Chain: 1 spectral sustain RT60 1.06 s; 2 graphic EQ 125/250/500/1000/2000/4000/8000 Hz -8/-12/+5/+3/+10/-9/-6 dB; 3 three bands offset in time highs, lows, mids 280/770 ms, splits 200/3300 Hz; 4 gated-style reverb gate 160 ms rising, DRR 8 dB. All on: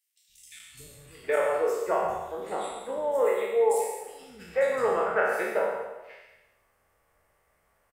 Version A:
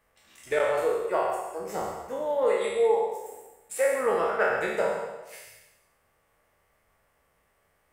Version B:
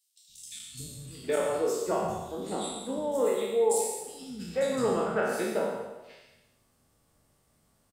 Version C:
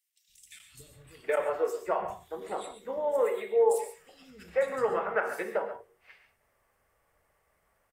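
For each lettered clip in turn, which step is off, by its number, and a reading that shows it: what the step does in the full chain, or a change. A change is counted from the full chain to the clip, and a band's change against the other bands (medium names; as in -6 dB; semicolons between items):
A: 3, echo-to-direct 17.0 dB to -8.0 dB; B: 2, crest factor change -2.0 dB; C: 1, momentary loudness spread change -4 LU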